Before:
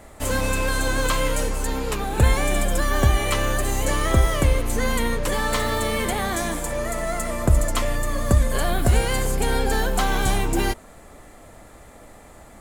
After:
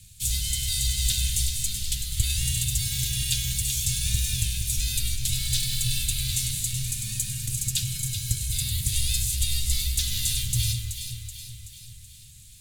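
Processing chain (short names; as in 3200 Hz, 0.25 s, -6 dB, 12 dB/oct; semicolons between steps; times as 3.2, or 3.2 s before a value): on a send: echo with dull and thin repeats by turns 0.189 s, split 1700 Hz, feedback 72%, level -5 dB; on the sum: ring modulator 460 Hz; elliptic band-stop 110–3600 Hz, stop band 80 dB; gain +8 dB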